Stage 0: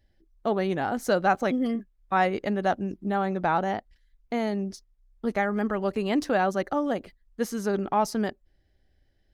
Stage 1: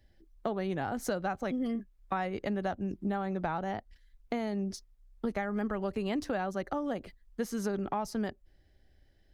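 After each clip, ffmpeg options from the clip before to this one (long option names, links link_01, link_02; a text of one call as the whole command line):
ffmpeg -i in.wav -filter_complex "[0:a]acrossover=split=120[link_01][link_02];[link_02]acompressor=threshold=-34dB:ratio=5[link_03];[link_01][link_03]amix=inputs=2:normalize=0,volume=2.5dB" out.wav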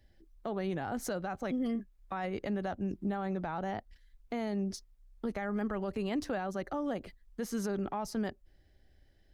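ffmpeg -i in.wav -af "alimiter=level_in=2dB:limit=-24dB:level=0:latency=1:release=17,volume=-2dB" out.wav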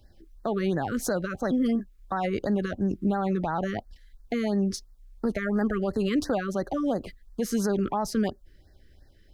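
ffmpeg -i in.wav -af "afftfilt=real='re*(1-between(b*sr/1024,720*pow(2900/720,0.5+0.5*sin(2*PI*2.9*pts/sr))/1.41,720*pow(2900/720,0.5+0.5*sin(2*PI*2.9*pts/sr))*1.41))':imag='im*(1-between(b*sr/1024,720*pow(2900/720,0.5+0.5*sin(2*PI*2.9*pts/sr))/1.41,720*pow(2900/720,0.5+0.5*sin(2*PI*2.9*pts/sr))*1.41))':win_size=1024:overlap=0.75,volume=8.5dB" out.wav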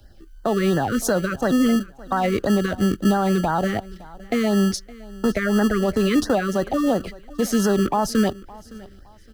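ffmpeg -i in.wav -filter_complex "[0:a]aecho=1:1:564|1128:0.0891|0.0267,acrossover=split=260|980|3200[link_01][link_02][link_03][link_04];[link_01]acrusher=samples=29:mix=1:aa=0.000001[link_05];[link_05][link_02][link_03][link_04]amix=inputs=4:normalize=0,volume=7dB" out.wav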